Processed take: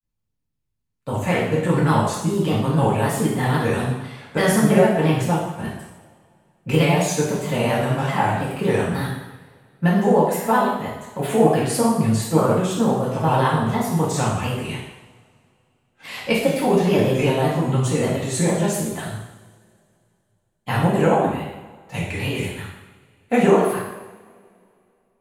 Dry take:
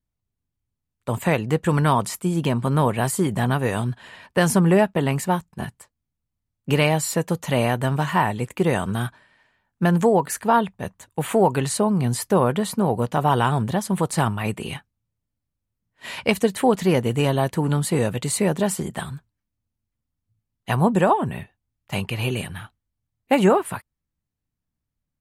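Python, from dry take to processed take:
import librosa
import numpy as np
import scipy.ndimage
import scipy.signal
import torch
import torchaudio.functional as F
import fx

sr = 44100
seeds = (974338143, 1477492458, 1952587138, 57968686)

y = fx.granulator(x, sr, seeds[0], grain_ms=100.0, per_s=20.0, spray_ms=17.0, spread_st=3)
y = fx.rev_double_slope(y, sr, seeds[1], early_s=0.89, late_s=2.7, knee_db=-21, drr_db=-5.5)
y = F.gain(torch.from_numpy(y), -4.0).numpy()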